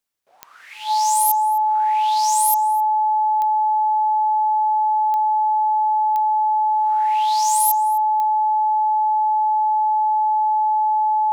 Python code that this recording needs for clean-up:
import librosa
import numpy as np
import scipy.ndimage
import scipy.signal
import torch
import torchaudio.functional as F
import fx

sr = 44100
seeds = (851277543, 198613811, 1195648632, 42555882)

y = fx.fix_declick_ar(x, sr, threshold=10.0)
y = fx.notch(y, sr, hz=860.0, q=30.0)
y = fx.fix_echo_inverse(y, sr, delay_ms=261, level_db=-19.0)